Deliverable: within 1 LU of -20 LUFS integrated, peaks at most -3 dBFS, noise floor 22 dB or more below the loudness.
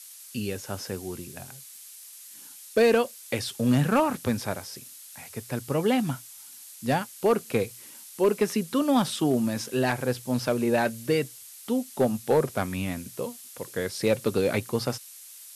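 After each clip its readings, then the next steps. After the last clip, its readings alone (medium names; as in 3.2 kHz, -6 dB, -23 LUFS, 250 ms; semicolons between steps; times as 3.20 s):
clipped samples 0.3%; clipping level -14.0 dBFS; noise floor -46 dBFS; noise floor target -49 dBFS; loudness -27.0 LUFS; peak level -14.0 dBFS; loudness target -20.0 LUFS
-> clip repair -14 dBFS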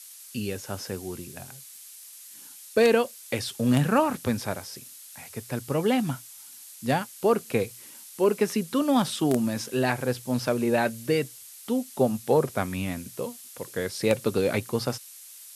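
clipped samples 0.0%; noise floor -46 dBFS; noise floor target -49 dBFS
-> noise reduction 6 dB, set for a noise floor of -46 dBFS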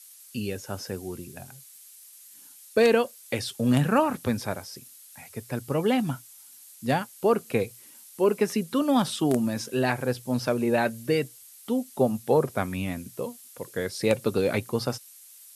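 noise floor -50 dBFS; loudness -26.5 LUFS; peak level -5.0 dBFS; loudness target -20.0 LUFS
-> trim +6.5 dB; peak limiter -3 dBFS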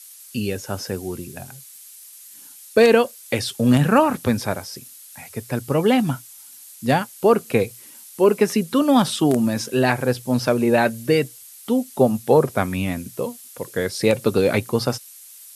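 loudness -20.5 LUFS; peak level -3.0 dBFS; noise floor -44 dBFS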